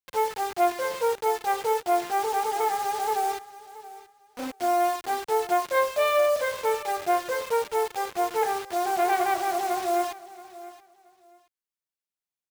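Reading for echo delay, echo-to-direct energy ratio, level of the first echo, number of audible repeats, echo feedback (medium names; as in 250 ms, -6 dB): 676 ms, -17.5 dB, -17.5 dB, 2, 21%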